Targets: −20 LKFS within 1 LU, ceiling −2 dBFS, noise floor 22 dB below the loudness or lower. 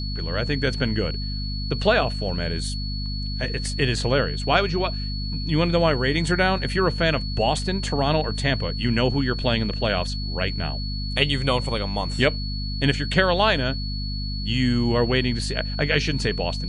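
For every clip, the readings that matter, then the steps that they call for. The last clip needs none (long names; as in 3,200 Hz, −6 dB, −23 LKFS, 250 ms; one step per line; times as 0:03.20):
mains hum 50 Hz; hum harmonics up to 250 Hz; level of the hum −26 dBFS; interfering tone 4,400 Hz; level of the tone −33 dBFS; integrated loudness −23.5 LKFS; sample peak −3.5 dBFS; target loudness −20.0 LKFS
→ mains-hum notches 50/100/150/200/250 Hz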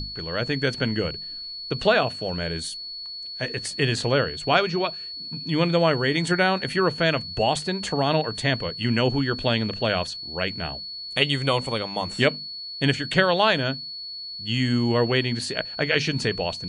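mains hum none found; interfering tone 4,400 Hz; level of the tone −33 dBFS
→ notch filter 4,400 Hz, Q 30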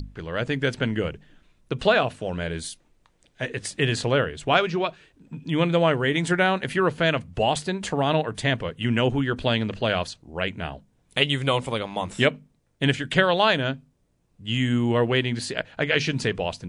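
interfering tone none found; integrated loudness −24.0 LKFS; sample peak −4.5 dBFS; target loudness −20.0 LKFS
→ level +4 dB
brickwall limiter −2 dBFS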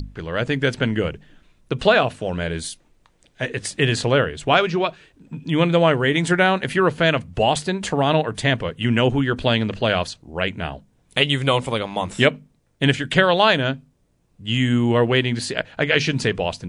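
integrated loudness −20.0 LKFS; sample peak −2.0 dBFS; background noise floor −62 dBFS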